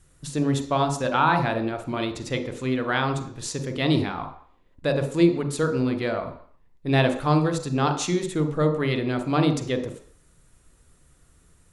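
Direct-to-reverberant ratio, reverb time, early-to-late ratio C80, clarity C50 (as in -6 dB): 5.5 dB, 0.55 s, 12.0 dB, 9.0 dB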